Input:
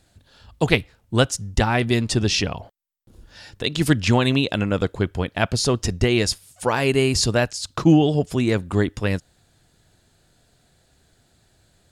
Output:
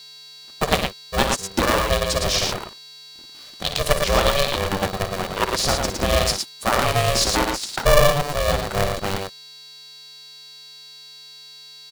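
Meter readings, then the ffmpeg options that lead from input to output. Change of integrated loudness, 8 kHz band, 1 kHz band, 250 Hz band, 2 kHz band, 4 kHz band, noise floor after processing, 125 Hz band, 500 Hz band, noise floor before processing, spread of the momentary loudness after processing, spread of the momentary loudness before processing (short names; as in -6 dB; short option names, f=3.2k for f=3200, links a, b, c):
0.0 dB, +3.5 dB, +5.5 dB, -8.5 dB, +1.0 dB, +3.0 dB, -43 dBFS, -5.0 dB, +1.5 dB, -62 dBFS, 21 LU, 8 LU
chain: -af "equalizer=f=125:t=o:w=1:g=-10,equalizer=f=250:t=o:w=1:g=4,equalizer=f=500:t=o:w=1:g=-4,equalizer=f=1k:t=o:w=1:g=8,equalizer=f=2k:t=o:w=1:g=-9,equalizer=f=4k:t=o:w=1:g=4,aecho=1:1:58.31|110.8:0.355|0.631,aeval=exprs='sgn(val(0))*max(abs(val(0))-0.00596,0)':c=same,aeval=exprs='val(0)+0.0112*sin(2*PI*4200*n/s)':c=same,aeval=exprs='val(0)*sgn(sin(2*PI*290*n/s))':c=same,volume=-1dB"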